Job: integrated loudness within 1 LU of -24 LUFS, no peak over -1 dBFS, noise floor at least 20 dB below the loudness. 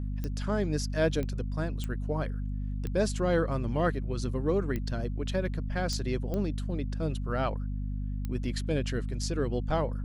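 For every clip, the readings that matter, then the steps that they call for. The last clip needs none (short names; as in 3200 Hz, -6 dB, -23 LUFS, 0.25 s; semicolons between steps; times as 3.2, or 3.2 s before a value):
clicks 8; hum 50 Hz; harmonics up to 250 Hz; hum level -30 dBFS; loudness -31.5 LUFS; peak -15.5 dBFS; loudness target -24.0 LUFS
-> de-click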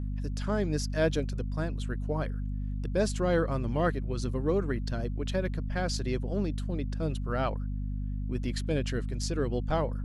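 clicks 0; hum 50 Hz; harmonics up to 250 Hz; hum level -30 dBFS
-> de-hum 50 Hz, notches 5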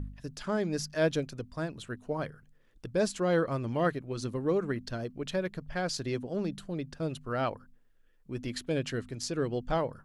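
hum none; loudness -33.0 LUFS; peak -16.5 dBFS; loudness target -24.0 LUFS
-> gain +9 dB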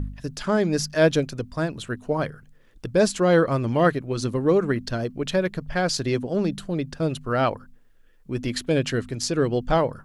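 loudness -24.0 LUFS; peak -7.5 dBFS; noise floor -53 dBFS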